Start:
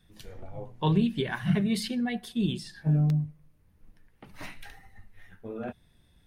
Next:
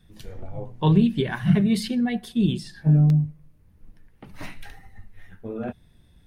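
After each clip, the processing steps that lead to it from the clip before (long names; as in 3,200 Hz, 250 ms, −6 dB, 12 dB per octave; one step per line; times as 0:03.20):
low-shelf EQ 440 Hz +5.5 dB
level +2 dB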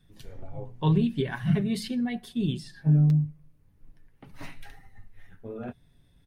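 comb filter 7.3 ms, depth 34%
level −5.5 dB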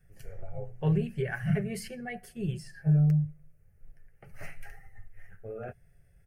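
phaser with its sweep stopped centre 1,000 Hz, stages 6
level +1.5 dB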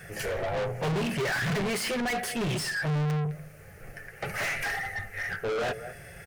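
far-end echo of a speakerphone 210 ms, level −27 dB
mid-hump overdrive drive 43 dB, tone 5,100 Hz, clips at −16.5 dBFS
level −5.5 dB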